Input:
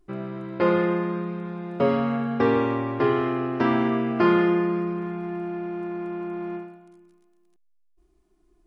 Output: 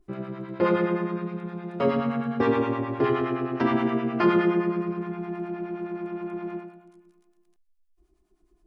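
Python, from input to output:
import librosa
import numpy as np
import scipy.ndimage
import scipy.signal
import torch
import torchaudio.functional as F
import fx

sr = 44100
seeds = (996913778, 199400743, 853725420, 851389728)

y = fx.harmonic_tremolo(x, sr, hz=9.6, depth_pct=70, crossover_hz=670.0)
y = y * librosa.db_to_amplitude(1.5)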